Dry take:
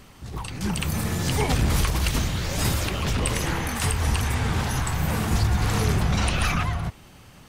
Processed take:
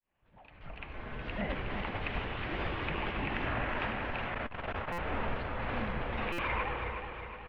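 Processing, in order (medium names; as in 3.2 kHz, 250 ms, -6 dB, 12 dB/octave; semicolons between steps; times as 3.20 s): fade-in on the opening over 2.19 s; compression, threshold -21 dBFS, peak gain reduction 5.5 dB; feedback delay 366 ms, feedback 52%, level -7 dB; on a send at -7 dB: reverberation RT60 0.60 s, pre-delay 35 ms; on the sum: mistuned SSB -220 Hz 180–3100 Hz; buffer glitch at 4.92/6.32 s, samples 256, times 10; 4.25–4.88 s: transformer saturation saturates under 120 Hz; trim -4.5 dB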